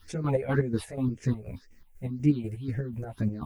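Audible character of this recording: a quantiser's noise floor 12-bit, dither triangular; phasing stages 6, 1.9 Hz, lowest notch 260–1100 Hz; chopped level 4.1 Hz, depth 60%, duty 45%; a shimmering, thickened sound

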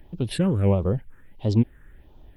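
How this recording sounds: a quantiser's noise floor 12-bit, dither none; phasing stages 4, 1.5 Hz, lowest notch 740–1700 Hz; Opus

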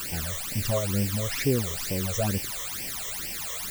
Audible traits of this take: a quantiser's noise floor 6-bit, dither triangular; phasing stages 12, 2.2 Hz, lowest notch 250–1300 Hz

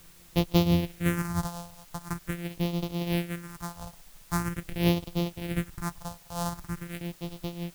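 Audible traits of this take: a buzz of ramps at a fixed pitch in blocks of 256 samples; phasing stages 4, 0.44 Hz, lowest notch 330–1600 Hz; tremolo triangle 5.8 Hz, depth 70%; a quantiser's noise floor 10-bit, dither triangular

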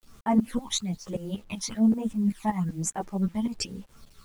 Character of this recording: phasing stages 12, 1.1 Hz, lowest notch 450–4700 Hz; tremolo saw up 5.2 Hz, depth 90%; a quantiser's noise floor 10-bit, dither none; a shimmering, thickened sound

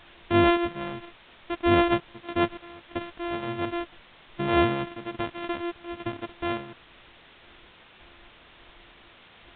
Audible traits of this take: a buzz of ramps at a fixed pitch in blocks of 128 samples; random-step tremolo 3.5 Hz, depth 90%; a quantiser's noise floor 8-bit, dither triangular; µ-law

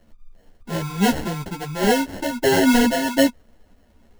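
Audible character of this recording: aliases and images of a low sample rate 1200 Hz, jitter 0%; a shimmering, thickened sound

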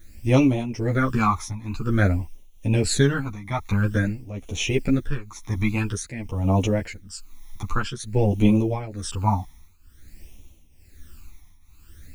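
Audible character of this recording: a quantiser's noise floor 10-bit, dither triangular; phasing stages 12, 0.5 Hz, lowest notch 480–1600 Hz; tremolo triangle 1.1 Hz, depth 85%; a shimmering, thickened sound

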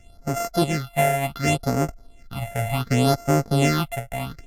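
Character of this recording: a buzz of ramps at a fixed pitch in blocks of 64 samples; phasing stages 6, 0.68 Hz, lowest notch 300–3700 Hz; Vorbis

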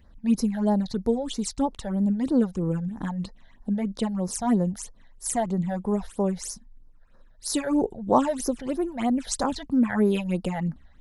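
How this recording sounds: phasing stages 8, 3.1 Hz, lowest notch 320–3000 Hz

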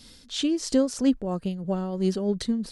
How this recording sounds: tremolo triangle 3 Hz, depth 55%

